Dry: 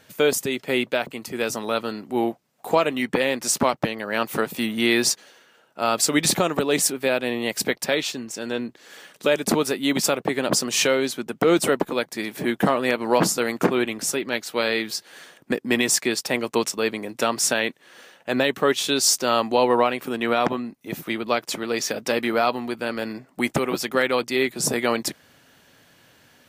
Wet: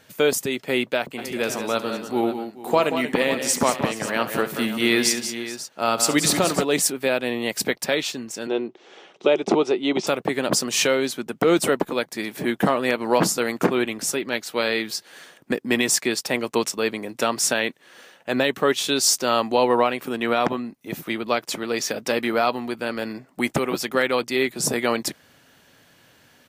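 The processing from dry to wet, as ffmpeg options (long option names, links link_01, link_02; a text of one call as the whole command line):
ffmpeg -i in.wav -filter_complex "[0:a]asplit=3[link_01][link_02][link_03];[link_01]afade=type=out:start_time=1.17:duration=0.02[link_04];[link_02]aecho=1:1:69|182|203|429|540:0.178|0.355|0.119|0.133|0.211,afade=type=in:start_time=1.17:duration=0.02,afade=type=out:start_time=6.63:duration=0.02[link_05];[link_03]afade=type=in:start_time=6.63:duration=0.02[link_06];[link_04][link_05][link_06]amix=inputs=3:normalize=0,asettb=1/sr,asplit=3[link_07][link_08][link_09];[link_07]atrim=end=8.474[link_10];[link_08]atrim=start=8.47:end=10.07,asetpts=PTS-STARTPTS,afade=type=in:duration=0.004:curve=qsin,afade=type=out:start_time=1.596:duration=0.004:curve=qsin,highpass=180,equalizer=frequency=250:width_type=q:width=4:gain=-4,equalizer=frequency=370:width_type=q:width=4:gain=10,equalizer=frequency=770:width_type=q:width=4:gain=6,equalizer=frequency=1700:width_type=q:width=4:gain=-9,equalizer=frequency=4500:width_type=q:width=4:gain=-9,lowpass=frequency=5300:width=0.5412,lowpass=frequency=5300:width=1.3066[link_11];[link_09]atrim=start=10.066[link_12];[link_10][link_11]acrossfade=duration=0.004:curve1=hsin:curve2=qsin[link_13];[link_13][link_12]acrossfade=duration=0.004:curve1=qsin:curve2=hsin" out.wav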